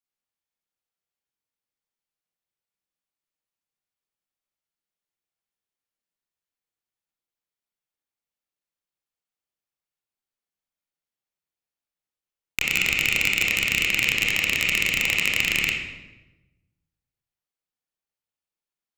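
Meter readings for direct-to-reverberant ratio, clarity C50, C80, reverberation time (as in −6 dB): −2.0 dB, 2.0 dB, 4.5 dB, 1.0 s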